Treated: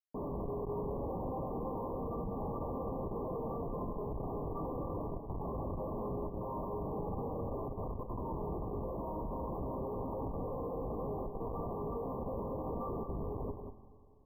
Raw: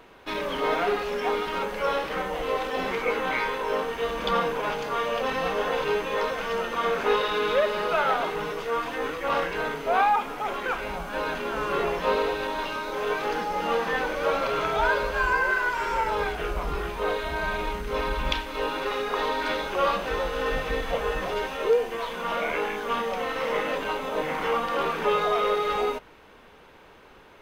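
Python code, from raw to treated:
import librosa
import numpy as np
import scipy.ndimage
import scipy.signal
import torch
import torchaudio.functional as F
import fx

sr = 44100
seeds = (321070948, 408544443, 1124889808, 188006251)

y = scipy.signal.sosfilt(scipy.signal.butter(2, 69.0, 'highpass', fs=sr, output='sos'), x)
y = fx.high_shelf(y, sr, hz=7300.0, db=9.5)
y = fx.over_compress(y, sr, threshold_db=-29.0, ratio=-1.0)
y = fx.comb_fb(y, sr, f0_hz=130.0, decay_s=0.63, harmonics='all', damping=0.0, mix_pct=70)
y = fx.stretch_vocoder_free(y, sr, factor=0.52)
y = fx.schmitt(y, sr, flips_db=-38.0)
y = fx.brickwall_bandstop(y, sr, low_hz=1200.0, high_hz=12000.0)
y = fx.air_absorb(y, sr, metres=66.0)
y = y + 10.0 ** (-7.0 / 20.0) * np.pad(y, (int(189 * sr / 1000.0), 0))[:len(y)]
y = fx.rev_schroeder(y, sr, rt60_s=2.8, comb_ms=33, drr_db=13.0)
y = y * librosa.db_to_amplitude(2.5)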